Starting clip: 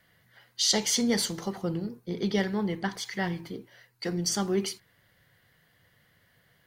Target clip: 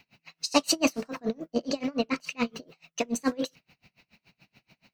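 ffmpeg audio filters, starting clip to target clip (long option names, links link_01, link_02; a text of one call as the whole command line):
ffmpeg -i in.wav -af "asetrate=59535,aresample=44100,highshelf=frequency=6100:width_type=q:width=1.5:gain=-7,aeval=exprs='val(0)*pow(10,-31*(0.5-0.5*cos(2*PI*7*n/s))/20)':channel_layout=same,volume=8dB" out.wav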